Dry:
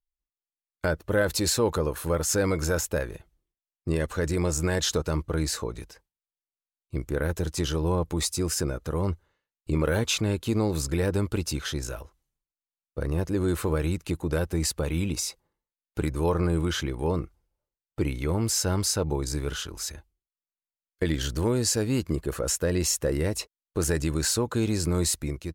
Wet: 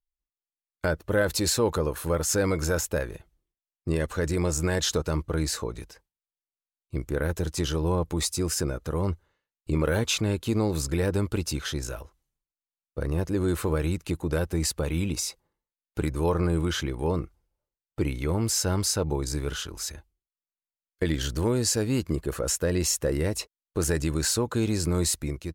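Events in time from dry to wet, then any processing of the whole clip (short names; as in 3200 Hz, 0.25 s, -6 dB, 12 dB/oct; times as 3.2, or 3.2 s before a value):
none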